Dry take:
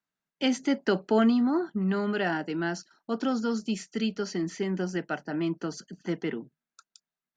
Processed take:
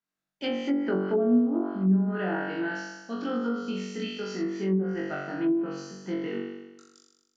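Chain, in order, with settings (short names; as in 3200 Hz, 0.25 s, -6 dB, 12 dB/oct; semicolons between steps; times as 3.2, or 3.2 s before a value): flutter echo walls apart 3.6 m, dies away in 1.1 s; treble ducked by the level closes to 500 Hz, closed at -14 dBFS; gain -6 dB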